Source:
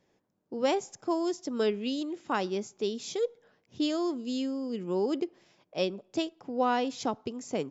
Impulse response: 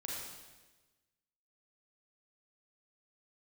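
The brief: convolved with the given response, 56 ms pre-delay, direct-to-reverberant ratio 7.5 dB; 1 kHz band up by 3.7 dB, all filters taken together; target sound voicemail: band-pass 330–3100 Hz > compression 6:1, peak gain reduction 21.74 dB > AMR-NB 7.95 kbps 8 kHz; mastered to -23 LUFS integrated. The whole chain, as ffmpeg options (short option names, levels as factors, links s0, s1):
-filter_complex "[0:a]equalizer=f=1000:t=o:g=5,asplit=2[s0][s1];[1:a]atrim=start_sample=2205,adelay=56[s2];[s1][s2]afir=irnorm=-1:irlink=0,volume=0.398[s3];[s0][s3]amix=inputs=2:normalize=0,highpass=330,lowpass=3100,acompressor=threshold=0.00708:ratio=6,volume=15.8" -ar 8000 -c:a libopencore_amrnb -b:a 7950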